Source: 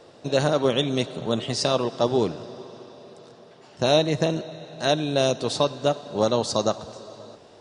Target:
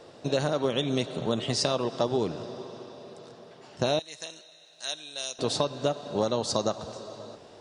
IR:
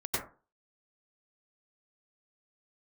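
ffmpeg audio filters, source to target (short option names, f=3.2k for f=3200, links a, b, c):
-filter_complex "[0:a]asettb=1/sr,asplit=3[a][b][c];[a]atrim=end=3.994[d];[b]atrim=start=3.99:end=5.39,asetpts=PTS-STARTPTS,afade=t=in:d=0.004:c=qsin,afade=t=out:st=1.396:d=0.004:c=qsin,aderivative[e];[c]atrim=start=5.386[f];[d][e]acrossfade=d=0.004:c1=hsin:c2=qsin[g];[g][f]acrossfade=d=0.004:c1=qsin:c2=hsin,acompressor=threshold=-22dB:ratio=6"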